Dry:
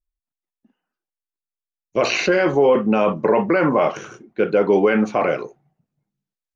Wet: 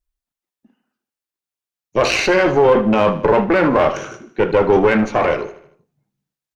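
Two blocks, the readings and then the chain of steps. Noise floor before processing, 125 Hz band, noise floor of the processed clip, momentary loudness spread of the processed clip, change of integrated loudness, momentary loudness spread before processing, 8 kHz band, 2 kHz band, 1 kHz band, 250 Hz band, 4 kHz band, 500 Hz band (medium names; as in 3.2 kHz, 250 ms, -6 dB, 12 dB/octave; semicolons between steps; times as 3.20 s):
under -85 dBFS, +4.0 dB, under -85 dBFS, 11 LU, +3.0 dB, 11 LU, no reading, +3.5 dB, +4.0 dB, +2.0 dB, +4.0 dB, +2.5 dB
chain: single-diode clipper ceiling -18.5 dBFS; on a send: feedback delay 77 ms, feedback 49%, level -15 dB; on the sum: trim +5 dB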